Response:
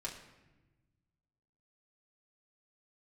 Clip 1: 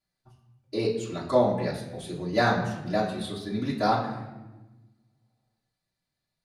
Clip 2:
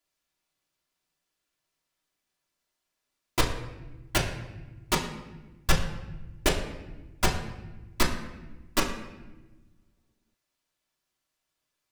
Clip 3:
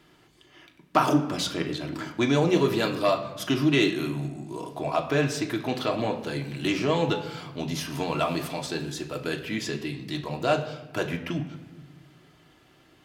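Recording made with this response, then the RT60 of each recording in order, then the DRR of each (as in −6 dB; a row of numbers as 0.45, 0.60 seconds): 2; 1.1, 1.1, 1.1 seconds; −9.0, −3.5, 2.0 decibels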